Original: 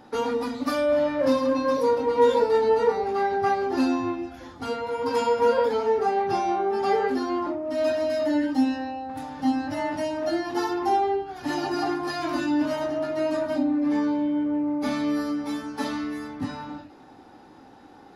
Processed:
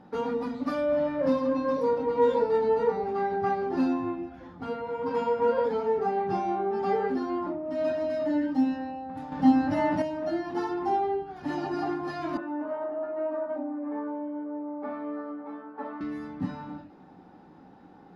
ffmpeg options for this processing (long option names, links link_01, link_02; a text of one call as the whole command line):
ffmpeg -i in.wav -filter_complex "[0:a]asettb=1/sr,asplit=3[link_01][link_02][link_03];[link_01]atrim=end=3.934[link_04];[link_02]atrim=start=3.93:end=5.57,asetpts=PTS-STARTPTS,afade=type=in:duration=0.004:curve=qsin,afade=type=out:start_time=1.636:duration=0.004:curve=qsin,bass=frequency=250:gain=-1,treble=frequency=4000:gain=-6[link_05];[link_03]atrim=start=5.566[link_06];[link_04][link_05]acrossfade=duration=0.004:curve1=hsin:curve2=qsin[link_07];[link_07][link_06]acrossfade=duration=0.004:curve1=qsin:curve2=hsin,asettb=1/sr,asplit=3[link_08][link_09][link_10];[link_08]atrim=end=12.374[link_11];[link_09]atrim=start=12.37:end=16.01,asetpts=PTS-STARTPTS,afade=type=in:duration=0.004:curve=qsin,afade=type=out:start_time=3.636:duration=0.004:curve=qsin,asuperpass=centerf=760:order=4:qfactor=0.68[link_12];[link_10]atrim=start=16.006[link_13];[link_11][link_12]acrossfade=duration=0.004:curve1=hsin:curve2=qsin[link_14];[link_14][link_13]acrossfade=duration=0.004:curve1=qsin:curve2=hsin,asplit=3[link_15][link_16][link_17];[link_15]atrim=end=9.322[link_18];[link_16]atrim=start=9.318:end=10.022,asetpts=PTS-STARTPTS,volume=6.5dB[link_19];[link_17]atrim=start=10.018[link_20];[link_18][link_19]acrossfade=duration=0.004:curve1=hsin:curve2=hsin[link_21];[link_21][link_20]acrossfade=duration=0.004:curve1=hsin:curve2=hsin,lowpass=frequency=1700:poles=1,equalizer=frequency=180:width_type=o:width=0.29:gain=14,volume=-3.5dB" out.wav